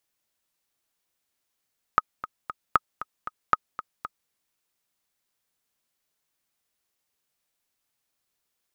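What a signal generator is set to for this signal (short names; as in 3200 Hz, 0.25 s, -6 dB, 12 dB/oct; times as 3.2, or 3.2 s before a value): metronome 232 bpm, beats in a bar 3, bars 3, 1260 Hz, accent 14.5 dB -4.5 dBFS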